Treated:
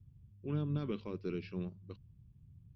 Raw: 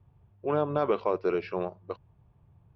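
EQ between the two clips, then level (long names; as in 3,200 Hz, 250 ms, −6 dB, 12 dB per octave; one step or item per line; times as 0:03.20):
drawn EQ curve 230 Hz 0 dB, 690 Hz −29 dB, 3,300 Hz −7 dB
+1.5 dB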